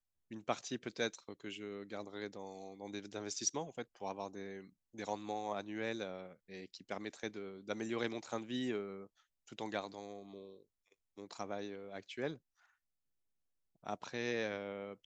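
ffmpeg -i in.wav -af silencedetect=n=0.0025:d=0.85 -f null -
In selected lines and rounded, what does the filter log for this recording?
silence_start: 12.36
silence_end: 13.84 | silence_duration: 1.47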